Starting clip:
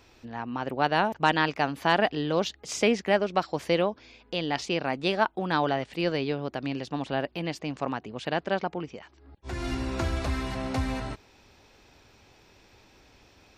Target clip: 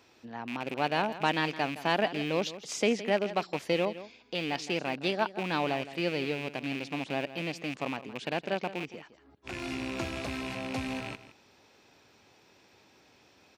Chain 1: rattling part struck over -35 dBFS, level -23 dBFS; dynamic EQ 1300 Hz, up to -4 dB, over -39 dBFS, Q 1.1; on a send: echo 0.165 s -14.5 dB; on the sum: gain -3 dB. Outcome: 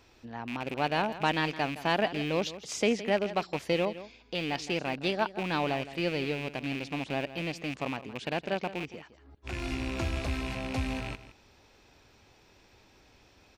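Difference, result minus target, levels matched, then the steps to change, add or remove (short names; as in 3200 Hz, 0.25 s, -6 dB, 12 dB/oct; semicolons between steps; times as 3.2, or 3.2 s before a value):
125 Hz band +3.0 dB
add after dynamic EQ: HPF 140 Hz 12 dB/oct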